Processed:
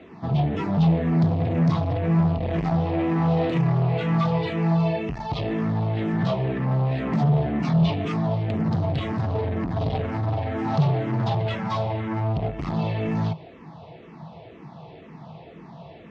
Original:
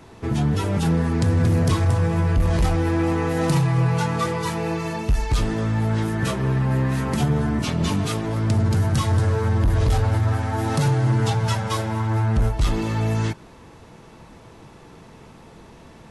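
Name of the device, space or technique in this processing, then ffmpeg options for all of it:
barber-pole phaser into a guitar amplifier: -filter_complex "[0:a]asplit=2[link_01][link_02];[link_02]afreqshift=-2[link_03];[link_01][link_03]amix=inputs=2:normalize=1,asoftclip=type=tanh:threshold=-23.5dB,highpass=100,equalizer=frequency=160:width_type=q:width=4:gain=10,equalizer=frequency=690:width_type=q:width=4:gain=9,equalizer=frequency=1500:width_type=q:width=4:gain=-7,lowpass=frequency=4000:width=0.5412,lowpass=frequency=4000:width=1.3066,volume=3dB"

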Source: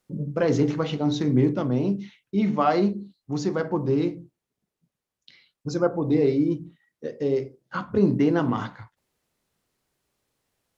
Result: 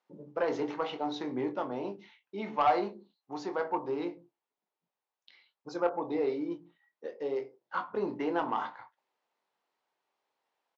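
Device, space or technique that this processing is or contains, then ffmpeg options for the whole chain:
intercom: -filter_complex "[0:a]highpass=450,lowpass=3900,equalizer=frequency=880:width_type=o:width=0.6:gain=9,asoftclip=type=tanh:threshold=-12.5dB,asplit=2[link_01][link_02];[link_02]adelay=23,volume=-10dB[link_03];[link_01][link_03]amix=inputs=2:normalize=0,volume=-5.5dB"

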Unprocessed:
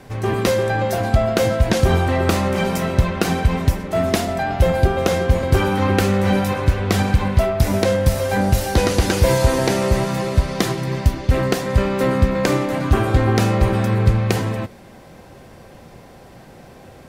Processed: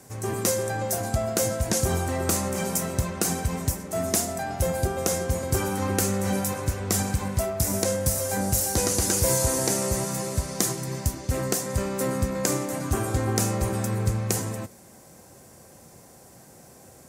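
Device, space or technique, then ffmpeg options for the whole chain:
budget condenser microphone: -af "highpass=67,highshelf=frequency=5000:width_type=q:width=1.5:gain=13.5,volume=-8.5dB"

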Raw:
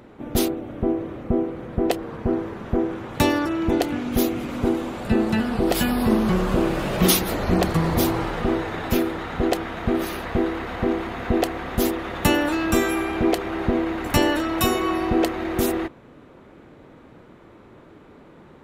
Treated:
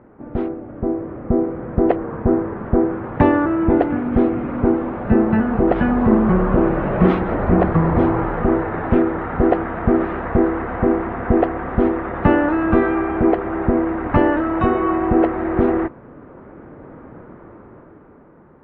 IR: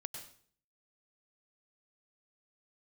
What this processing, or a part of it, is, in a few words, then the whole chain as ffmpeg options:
action camera in a waterproof case: -af "lowpass=frequency=1700:width=0.5412,lowpass=frequency=1700:width=1.3066,dynaudnorm=framelen=150:gausssize=17:maxgain=11.5dB,volume=-1dB" -ar 48000 -c:a aac -b:a 48k

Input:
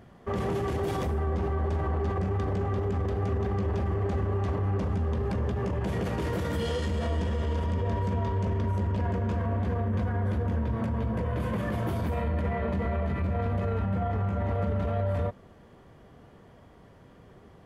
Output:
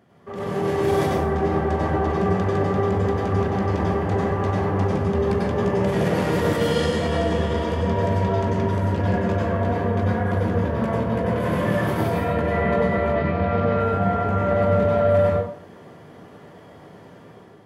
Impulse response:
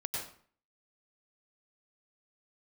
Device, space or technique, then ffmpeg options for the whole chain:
far laptop microphone: -filter_complex "[1:a]atrim=start_sample=2205[link_01];[0:a][link_01]afir=irnorm=-1:irlink=0,highpass=150,dynaudnorm=framelen=280:gausssize=5:maxgain=10dB,asettb=1/sr,asplit=3[link_02][link_03][link_04];[link_02]atrim=end=13.154[link_05];[link_03]atrim=start=13.15:end=13.8,asetpts=PTS-STARTPTS,afade=type=in:duration=0.004:curve=qsin,afade=type=out:start_time=0.646:duration=0.004:curve=qsin,lowpass=frequency=5200:width=0.5412,lowpass=frequency=5200:width=1.3066[link_06];[link_04]atrim=start=13.796[link_07];[link_05][link_06]acrossfade=duration=0.004:curve1=hsin:curve2=qsin[link_08];[link_08][link_07]acrossfade=duration=0.004:curve1=qsin:curve2=hsin,volume=-2dB"

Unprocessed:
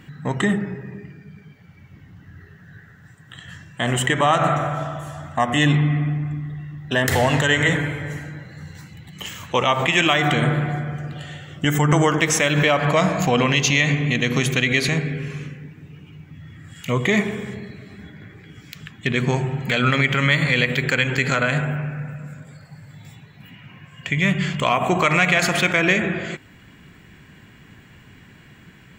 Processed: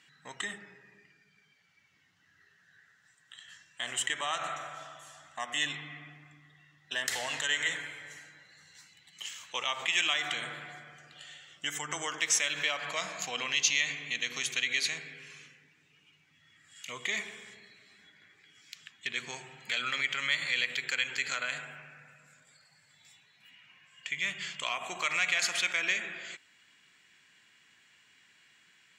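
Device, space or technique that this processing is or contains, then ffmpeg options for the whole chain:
piezo pickup straight into a mixer: -af "lowpass=6200,aderivative"

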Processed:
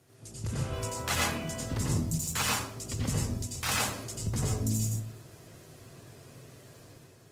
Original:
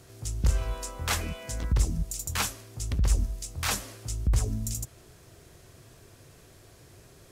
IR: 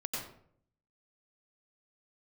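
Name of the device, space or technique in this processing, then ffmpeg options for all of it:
far-field microphone of a smart speaker: -filter_complex "[1:a]atrim=start_sample=2205[link_01];[0:a][link_01]afir=irnorm=-1:irlink=0,highpass=frequency=93:width=0.5412,highpass=frequency=93:width=1.3066,dynaudnorm=framelen=210:gausssize=5:maxgain=6dB,volume=-6.5dB" -ar 48000 -c:a libopus -b:a 20k

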